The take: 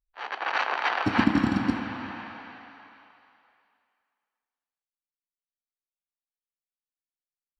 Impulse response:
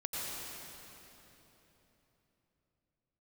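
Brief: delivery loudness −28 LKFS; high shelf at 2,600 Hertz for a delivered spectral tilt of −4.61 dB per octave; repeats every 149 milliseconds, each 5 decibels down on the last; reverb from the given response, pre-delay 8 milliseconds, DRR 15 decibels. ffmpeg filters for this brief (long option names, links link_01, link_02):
-filter_complex "[0:a]highshelf=frequency=2600:gain=-8.5,aecho=1:1:149|298|447|596|745|894|1043:0.562|0.315|0.176|0.0988|0.0553|0.031|0.0173,asplit=2[link_01][link_02];[1:a]atrim=start_sample=2205,adelay=8[link_03];[link_02][link_03]afir=irnorm=-1:irlink=0,volume=-18.5dB[link_04];[link_01][link_04]amix=inputs=2:normalize=0,volume=-2dB"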